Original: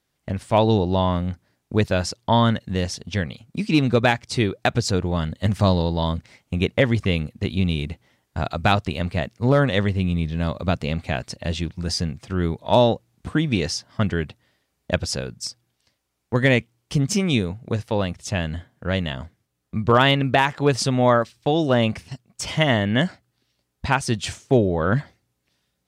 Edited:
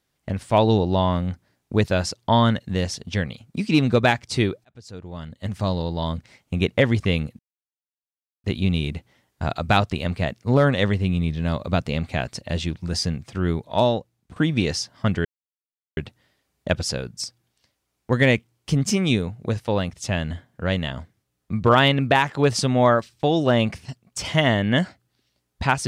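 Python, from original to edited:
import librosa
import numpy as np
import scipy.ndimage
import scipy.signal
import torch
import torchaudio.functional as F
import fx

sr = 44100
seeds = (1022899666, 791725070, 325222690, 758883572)

y = fx.edit(x, sr, fx.fade_in_span(start_s=4.65, length_s=1.98),
    fx.insert_silence(at_s=7.39, length_s=1.05),
    fx.fade_out_to(start_s=12.44, length_s=0.87, floor_db=-12.5),
    fx.insert_silence(at_s=14.2, length_s=0.72), tone=tone)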